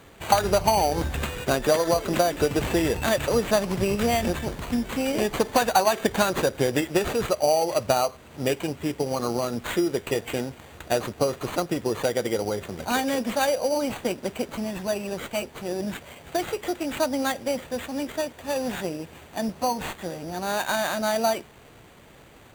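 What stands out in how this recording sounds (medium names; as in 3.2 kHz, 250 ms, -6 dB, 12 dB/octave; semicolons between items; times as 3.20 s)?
aliases and images of a low sample rate 5.3 kHz, jitter 0%; Opus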